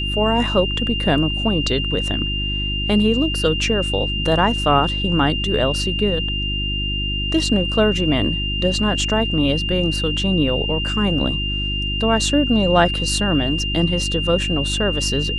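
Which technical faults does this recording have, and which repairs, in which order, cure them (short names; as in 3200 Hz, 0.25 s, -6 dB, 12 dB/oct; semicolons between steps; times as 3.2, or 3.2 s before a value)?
hum 50 Hz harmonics 7 -25 dBFS
tone 2800 Hz -23 dBFS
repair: de-hum 50 Hz, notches 7; notch 2800 Hz, Q 30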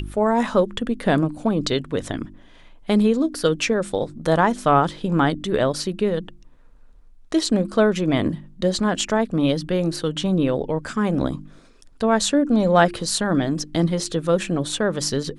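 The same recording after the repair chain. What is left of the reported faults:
none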